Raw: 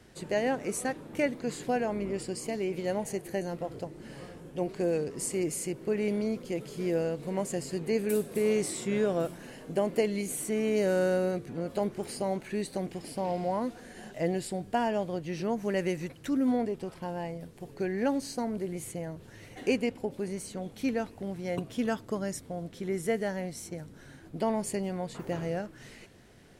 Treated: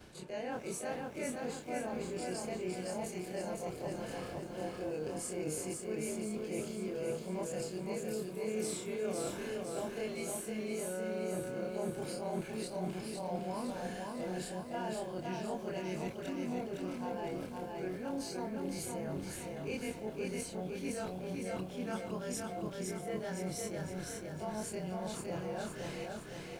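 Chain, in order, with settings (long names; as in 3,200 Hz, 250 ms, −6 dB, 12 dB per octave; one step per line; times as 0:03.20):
every overlapping window played backwards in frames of 65 ms
parametric band 1,700 Hz +4 dB 3 octaves
notch filter 1,900 Hz, Q 6.9
reversed playback
downward compressor 6 to 1, threshold −42 dBFS, peak gain reduction 19 dB
reversed playback
feedback echo at a low word length 511 ms, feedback 55%, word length 12 bits, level −3 dB
level +4 dB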